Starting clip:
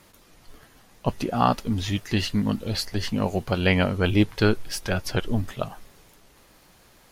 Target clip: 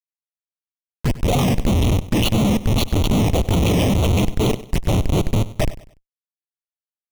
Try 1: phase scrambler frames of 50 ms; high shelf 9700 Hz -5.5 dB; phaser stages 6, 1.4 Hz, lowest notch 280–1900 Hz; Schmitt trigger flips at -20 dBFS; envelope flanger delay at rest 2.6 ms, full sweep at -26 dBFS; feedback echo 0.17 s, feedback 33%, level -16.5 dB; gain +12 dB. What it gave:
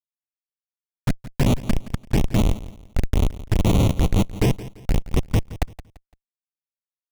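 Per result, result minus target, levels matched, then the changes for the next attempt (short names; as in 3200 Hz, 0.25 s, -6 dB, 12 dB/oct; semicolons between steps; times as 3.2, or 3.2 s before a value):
echo 73 ms late; Schmitt trigger: distortion +6 dB
change: feedback echo 97 ms, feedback 33%, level -16.5 dB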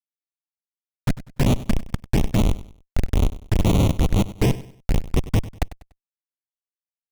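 Schmitt trigger: distortion +6 dB
change: Schmitt trigger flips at -31 dBFS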